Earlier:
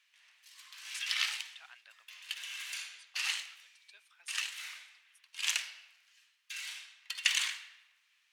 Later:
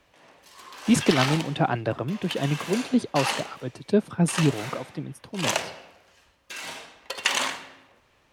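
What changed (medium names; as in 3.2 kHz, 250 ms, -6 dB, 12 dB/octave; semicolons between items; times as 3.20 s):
speech +11.5 dB; master: remove ladder high-pass 1.6 kHz, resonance 20%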